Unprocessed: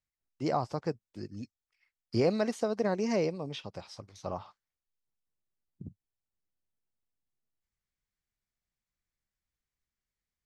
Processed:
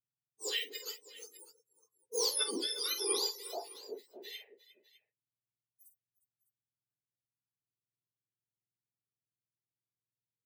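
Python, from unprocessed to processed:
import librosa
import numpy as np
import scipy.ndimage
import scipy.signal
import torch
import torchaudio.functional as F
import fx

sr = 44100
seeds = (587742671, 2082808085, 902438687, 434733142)

y = fx.octave_mirror(x, sr, pivot_hz=1500.0)
y = fx.echo_multitap(y, sr, ms=(48, 49, 355, 357, 604), db=(-19.0, -7.5, -13.5, -17.0, -12.5))
y = fx.spectral_expand(y, sr, expansion=1.5)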